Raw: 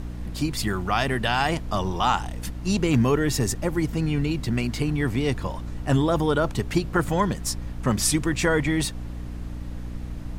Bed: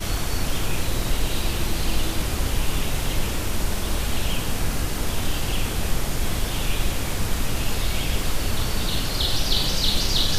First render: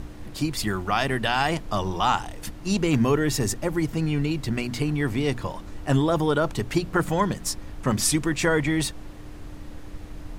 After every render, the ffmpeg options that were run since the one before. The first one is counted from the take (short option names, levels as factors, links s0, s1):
-af "bandreject=f=60:t=h:w=6,bandreject=f=120:t=h:w=6,bandreject=f=180:t=h:w=6,bandreject=f=240:t=h:w=6"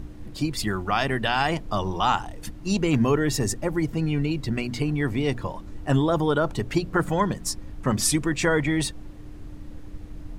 -af "afftdn=nr=7:nf=-40"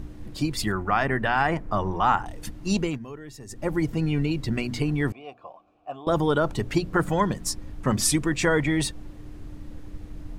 -filter_complex "[0:a]asettb=1/sr,asplit=3[s0][s1][s2];[s0]atrim=end=0.724[s3];[s1]atrim=start=0.72:end=2.26,asetpts=PTS-STARTPTS,afade=t=in:d=0.004:c=qsin,afade=t=out:st=1.536:d=0.004:c=qsin,highshelf=f=2500:t=q:w=1.5:g=-9[s4];[s2]atrim=start=2.256[s5];[s3][s4]acrossfade=d=0.004:c1=hsin:c2=qsin[s6];[s6][s5]acrossfade=d=0.004:c1=qsin:c2=hsin,asettb=1/sr,asplit=3[s7][s8][s9];[s7]atrim=end=5.124[s10];[s8]atrim=start=5.12:end=6.07,asetpts=PTS-STARTPTS,afade=t=in:d=0.004:c=qsin,afade=t=out:st=0.946:d=0.004:c=qsin,asplit=3[s11][s12][s13];[s11]bandpass=f=730:t=q:w=8,volume=1[s14];[s12]bandpass=f=1090:t=q:w=8,volume=0.501[s15];[s13]bandpass=f=2440:t=q:w=8,volume=0.355[s16];[s14][s15][s16]amix=inputs=3:normalize=0[s17];[s9]atrim=start=6.066[s18];[s10][s17]acrossfade=d=0.004:c1=hsin:c2=qsin[s19];[s19][s18]acrossfade=d=0.004:c1=qsin:c2=hsin,asplit=3[s20][s21][s22];[s20]atrim=end=2.99,asetpts=PTS-STARTPTS,afade=t=out:st=2.78:d=0.21:silence=0.125893[s23];[s21]atrim=start=2.99:end=3.48,asetpts=PTS-STARTPTS,volume=0.126[s24];[s22]atrim=start=3.48,asetpts=PTS-STARTPTS,afade=t=in:d=0.21:silence=0.125893[s25];[s23][s24][s25]concat=n=3:v=0:a=1"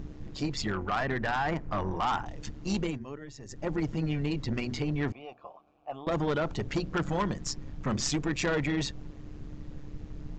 -af "tremolo=f=140:d=0.667,aresample=16000,asoftclip=type=tanh:threshold=0.075,aresample=44100"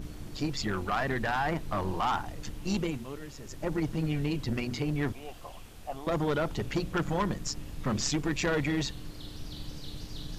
-filter_complex "[1:a]volume=0.0596[s0];[0:a][s0]amix=inputs=2:normalize=0"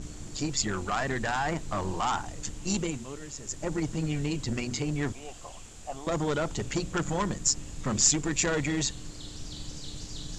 -af "lowpass=f=7300:t=q:w=6.6"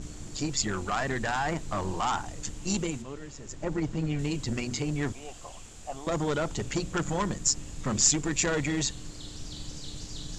-filter_complex "[0:a]asettb=1/sr,asplit=3[s0][s1][s2];[s0]atrim=end=3.024[s3];[s1]atrim=start=3.02:end=4.19,asetpts=PTS-STARTPTS,afade=t=in:d=0.004:c=qsin,afade=t=out:st=1.166:d=0.004:c=qsin,aemphasis=mode=reproduction:type=50fm[s4];[s2]atrim=start=4.186[s5];[s3][s4]acrossfade=d=0.004:c1=hsin:c2=qsin[s6];[s6][s5]acrossfade=d=0.004:c1=qsin:c2=hsin"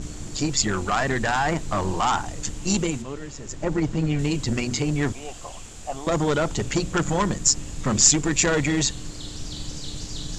-af "volume=2.11"